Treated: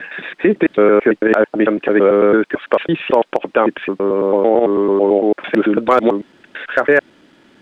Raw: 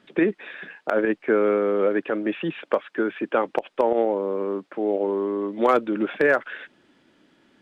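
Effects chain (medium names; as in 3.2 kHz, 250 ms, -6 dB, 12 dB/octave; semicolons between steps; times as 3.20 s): slices played last to first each 111 ms, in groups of 7; loudness maximiser +11.5 dB; trim -1 dB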